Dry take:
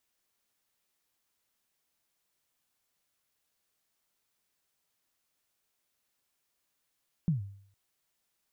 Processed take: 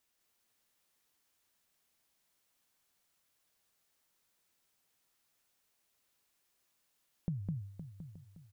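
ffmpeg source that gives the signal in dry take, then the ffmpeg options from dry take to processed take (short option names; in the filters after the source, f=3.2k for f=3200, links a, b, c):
-f lavfi -i "aevalsrc='0.0841*pow(10,-3*t/0.6)*sin(2*PI*(180*0.133/log(99/180)*(exp(log(99/180)*min(t,0.133)/0.133)-1)+99*max(t-0.133,0)))':d=0.46:s=44100"
-filter_complex "[0:a]asplit=2[a][b];[b]aecho=0:1:207:0.708[c];[a][c]amix=inputs=2:normalize=0,acompressor=threshold=-34dB:ratio=6,asplit=2[d][e];[e]aecho=0:1:515|875:0.282|0.106[f];[d][f]amix=inputs=2:normalize=0"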